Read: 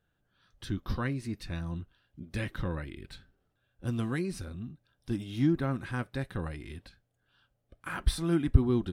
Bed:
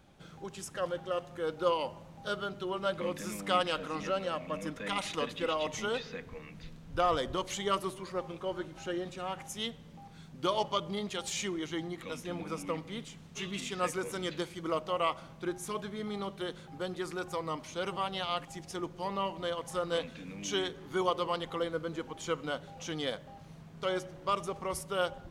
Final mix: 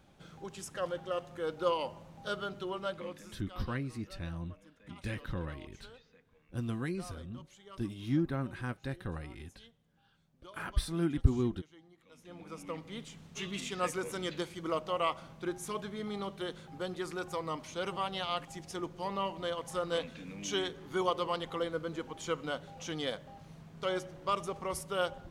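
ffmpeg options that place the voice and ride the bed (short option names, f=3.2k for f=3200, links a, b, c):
-filter_complex "[0:a]adelay=2700,volume=-4dB[a];[1:a]volume=19.5dB,afade=t=out:st=2.61:d=0.82:silence=0.0944061,afade=t=in:st=12.08:d=1.11:silence=0.0891251[b];[a][b]amix=inputs=2:normalize=0"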